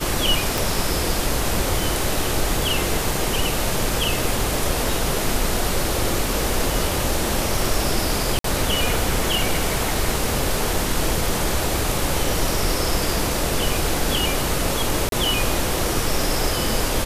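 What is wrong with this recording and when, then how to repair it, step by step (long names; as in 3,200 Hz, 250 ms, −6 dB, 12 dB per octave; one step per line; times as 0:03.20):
0:00.58: click
0:08.39–0:08.44: drop-out 53 ms
0:15.09–0:15.12: drop-out 32 ms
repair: click removal
repair the gap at 0:08.39, 53 ms
repair the gap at 0:15.09, 32 ms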